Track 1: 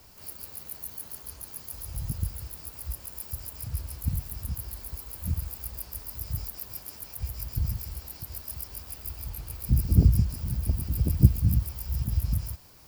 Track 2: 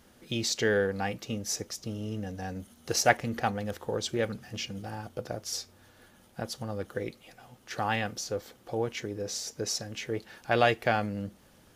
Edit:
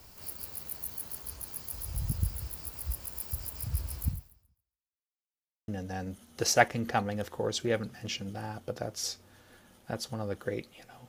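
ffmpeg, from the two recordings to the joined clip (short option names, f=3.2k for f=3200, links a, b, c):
-filter_complex "[0:a]apad=whole_dur=11.08,atrim=end=11.08,asplit=2[a][b];[a]atrim=end=5.23,asetpts=PTS-STARTPTS,afade=t=out:st=4.05:d=1.18:c=exp[c];[b]atrim=start=5.23:end=5.68,asetpts=PTS-STARTPTS,volume=0[d];[1:a]atrim=start=2.17:end=7.57,asetpts=PTS-STARTPTS,afade=t=in:d=0.004:c=hsin[e];[c][d][e]concat=n=3:v=0:a=1"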